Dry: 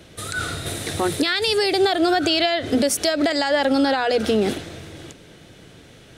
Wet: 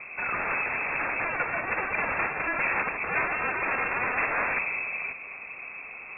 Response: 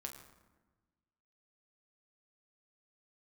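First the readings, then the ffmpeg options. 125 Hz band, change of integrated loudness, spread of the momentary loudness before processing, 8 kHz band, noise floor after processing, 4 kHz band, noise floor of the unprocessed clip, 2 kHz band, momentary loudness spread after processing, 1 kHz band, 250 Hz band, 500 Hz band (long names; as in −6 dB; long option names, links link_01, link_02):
−12.0 dB, −7.0 dB, 10 LU, below −40 dB, −42 dBFS, below −40 dB, −47 dBFS, +1.5 dB, 12 LU, −4.5 dB, −20.5 dB, −15.5 dB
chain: -af "aeval=exprs='(mod(16.8*val(0)+1,2)-1)/16.8':channel_layout=same,lowpass=frequency=2300:width_type=q:width=0.5098,lowpass=frequency=2300:width_type=q:width=0.6013,lowpass=frequency=2300:width_type=q:width=0.9,lowpass=frequency=2300:width_type=q:width=2.563,afreqshift=-2700,volume=6dB"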